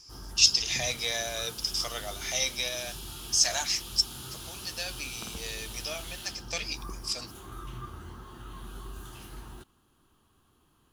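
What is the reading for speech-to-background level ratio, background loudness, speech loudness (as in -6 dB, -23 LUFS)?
12.5 dB, -41.5 LUFS, -29.0 LUFS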